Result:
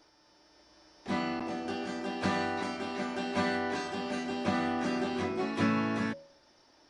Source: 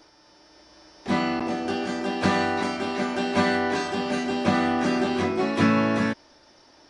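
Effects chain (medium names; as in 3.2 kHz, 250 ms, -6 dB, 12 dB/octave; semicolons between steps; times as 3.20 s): de-hum 79.7 Hz, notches 8; trim -8 dB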